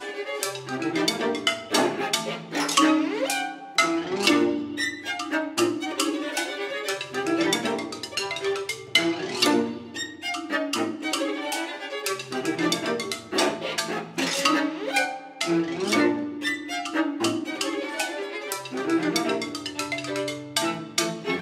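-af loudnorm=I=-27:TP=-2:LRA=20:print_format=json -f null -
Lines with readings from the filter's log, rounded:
"input_i" : "-25.8",
"input_tp" : "-4.5",
"input_lra" : "3.6",
"input_thresh" : "-35.8",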